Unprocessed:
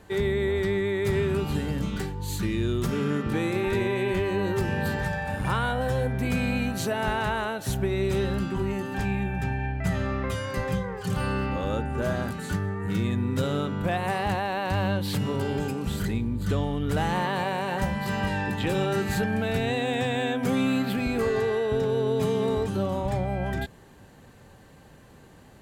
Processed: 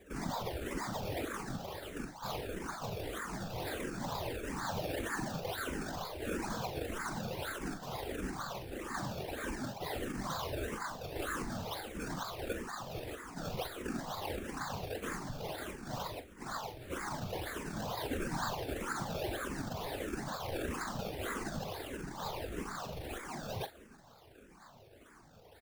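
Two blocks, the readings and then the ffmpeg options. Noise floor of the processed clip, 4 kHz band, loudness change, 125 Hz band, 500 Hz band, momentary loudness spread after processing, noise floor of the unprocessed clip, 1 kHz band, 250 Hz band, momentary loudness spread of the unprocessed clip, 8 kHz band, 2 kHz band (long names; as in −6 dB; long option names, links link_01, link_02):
−58 dBFS, −8.0 dB, −12.5 dB, −16.0 dB, −14.0 dB, 5 LU, −51 dBFS, −9.5 dB, −14.0 dB, 4 LU, −4.0 dB, −11.0 dB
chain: -filter_complex "[0:a]highpass=frequency=1000:width=0.5412,highpass=frequency=1000:width=1.3066,equalizer=frequency=11000:width_type=o:width=0.55:gain=12.5,alimiter=level_in=4.5dB:limit=-24dB:level=0:latency=1:release=21,volume=-4.5dB,acrusher=samples=30:mix=1:aa=0.000001:lfo=1:lforange=30:lforate=2.1,afftfilt=real='hypot(re,im)*cos(2*PI*random(0))':imag='hypot(re,im)*sin(2*PI*random(1))':win_size=512:overlap=0.75,asplit=2[link_01][link_02];[link_02]adelay=42,volume=-12dB[link_03];[link_01][link_03]amix=inputs=2:normalize=0,asplit=2[link_04][link_05];[link_05]aecho=0:1:308:0.075[link_06];[link_04][link_06]amix=inputs=2:normalize=0,asplit=2[link_07][link_08];[link_08]afreqshift=-1.6[link_09];[link_07][link_09]amix=inputs=2:normalize=1,volume=8.5dB"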